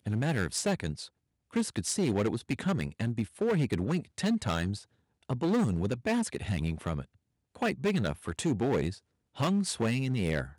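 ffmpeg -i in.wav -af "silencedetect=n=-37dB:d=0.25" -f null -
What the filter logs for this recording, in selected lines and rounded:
silence_start: 1.06
silence_end: 1.56 | silence_duration: 0.50
silence_start: 4.78
silence_end: 5.30 | silence_duration: 0.51
silence_start: 7.02
silence_end: 7.55 | silence_duration: 0.53
silence_start: 8.93
silence_end: 9.38 | silence_duration: 0.45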